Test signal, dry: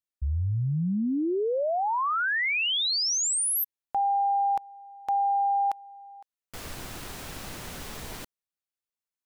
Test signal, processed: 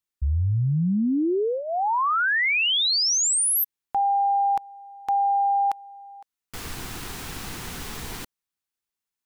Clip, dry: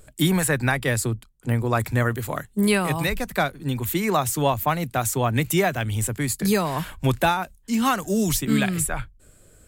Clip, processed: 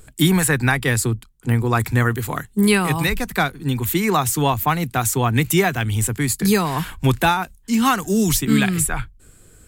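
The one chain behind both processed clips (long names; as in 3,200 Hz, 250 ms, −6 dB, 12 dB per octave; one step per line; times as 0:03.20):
parametric band 590 Hz −11.5 dB 0.29 octaves
level +4.5 dB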